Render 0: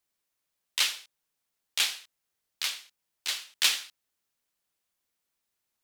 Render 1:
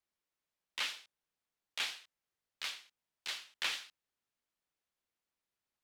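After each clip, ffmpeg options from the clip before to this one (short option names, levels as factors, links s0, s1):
-filter_complex "[0:a]lowpass=f=3400:p=1,acrossover=split=300|1500|2600[s0][s1][s2][s3];[s3]alimiter=level_in=1.26:limit=0.0631:level=0:latency=1,volume=0.794[s4];[s0][s1][s2][s4]amix=inputs=4:normalize=0,volume=0.596"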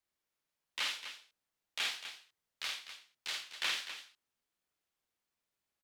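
-af "aecho=1:1:49.56|250.7:0.708|0.316"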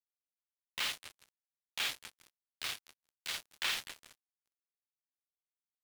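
-af "aecho=1:1:413|826|1239|1652|2065|2478:0.2|0.116|0.0671|0.0389|0.0226|0.0131,acrusher=bits=5:mix=0:aa=0.5"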